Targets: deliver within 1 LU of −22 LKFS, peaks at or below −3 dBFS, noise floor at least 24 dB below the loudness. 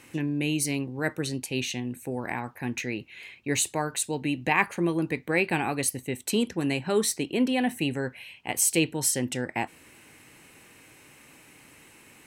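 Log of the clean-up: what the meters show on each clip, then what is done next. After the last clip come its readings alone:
integrated loudness −28.0 LKFS; sample peak −8.0 dBFS; target loudness −22.0 LKFS
→ level +6 dB
brickwall limiter −3 dBFS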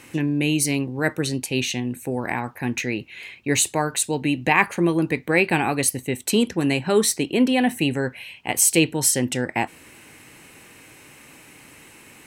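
integrated loudness −22.0 LKFS; sample peak −3.0 dBFS; background noise floor −48 dBFS

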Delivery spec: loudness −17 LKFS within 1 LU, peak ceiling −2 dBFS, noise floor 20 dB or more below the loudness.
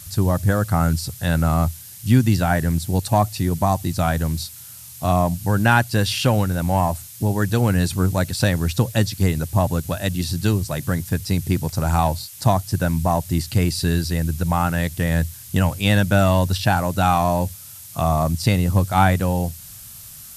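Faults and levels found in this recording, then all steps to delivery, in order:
background noise floor −40 dBFS; target noise floor −41 dBFS; integrated loudness −20.5 LKFS; sample peak −2.0 dBFS; target loudness −17.0 LKFS
→ broadband denoise 6 dB, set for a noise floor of −40 dBFS
level +3.5 dB
brickwall limiter −2 dBFS

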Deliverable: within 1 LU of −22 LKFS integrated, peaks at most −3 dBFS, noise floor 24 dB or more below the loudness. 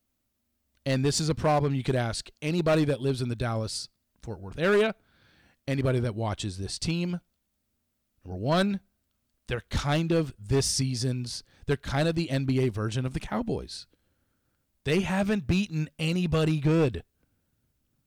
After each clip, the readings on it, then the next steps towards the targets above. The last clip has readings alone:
share of clipped samples 1.2%; peaks flattened at −18.0 dBFS; integrated loudness −28.0 LKFS; sample peak −18.0 dBFS; target loudness −22.0 LKFS
→ clipped peaks rebuilt −18 dBFS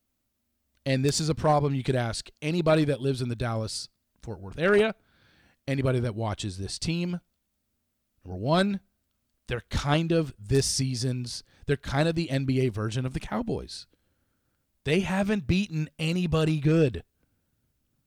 share of clipped samples 0.0%; integrated loudness −27.5 LKFS; sample peak −9.0 dBFS; target loudness −22.0 LKFS
→ level +5.5 dB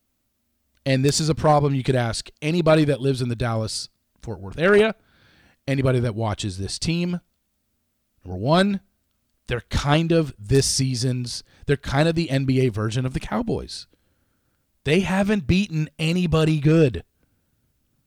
integrated loudness −22.0 LKFS; sample peak −3.5 dBFS; background noise floor −72 dBFS

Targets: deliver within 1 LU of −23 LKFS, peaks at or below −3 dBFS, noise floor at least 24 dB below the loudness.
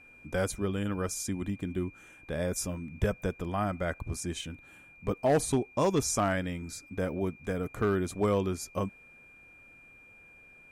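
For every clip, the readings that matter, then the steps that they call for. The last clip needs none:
share of clipped samples 0.3%; peaks flattened at −19.0 dBFS; interfering tone 2,400 Hz; level of the tone −53 dBFS; integrated loudness −32.0 LKFS; sample peak −19.0 dBFS; target loudness −23.0 LKFS
→ clipped peaks rebuilt −19 dBFS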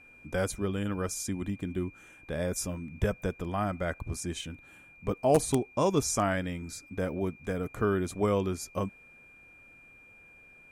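share of clipped samples 0.0%; interfering tone 2,400 Hz; level of the tone −53 dBFS
→ notch filter 2,400 Hz, Q 30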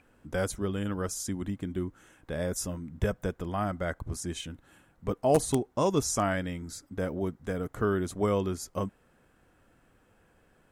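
interfering tone none found; integrated loudness −31.5 LKFS; sample peak −10.0 dBFS; target loudness −23.0 LKFS
→ level +8.5 dB
brickwall limiter −3 dBFS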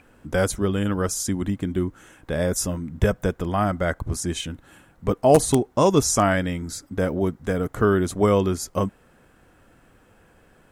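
integrated loudness −23.0 LKFS; sample peak −3.0 dBFS; background noise floor −57 dBFS

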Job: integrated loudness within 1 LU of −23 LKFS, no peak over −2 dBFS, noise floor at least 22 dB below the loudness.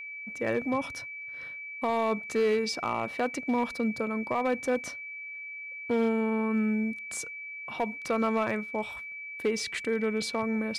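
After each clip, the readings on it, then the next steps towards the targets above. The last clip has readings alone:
share of clipped samples 0.7%; peaks flattened at −20.5 dBFS; interfering tone 2,300 Hz; level of the tone −38 dBFS; integrated loudness −30.5 LKFS; sample peak −20.5 dBFS; target loudness −23.0 LKFS
→ clipped peaks rebuilt −20.5 dBFS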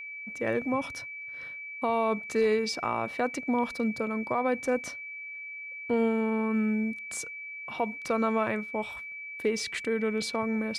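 share of clipped samples 0.0%; interfering tone 2,300 Hz; level of the tone −38 dBFS
→ notch filter 2,300 Hz, Q 30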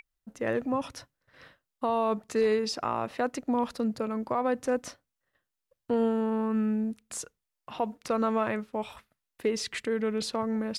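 interfering tone none found; integrated loudness −30.0 LKFS; sample peak −16.0 dBFS; target loudness −23.0 LKFS
→ level +7 dB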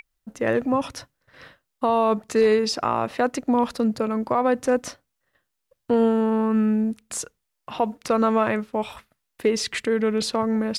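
integrated loudness −23.0 LKFS; sample peak −9.0 dBFS; background noise floor −79 dBFS

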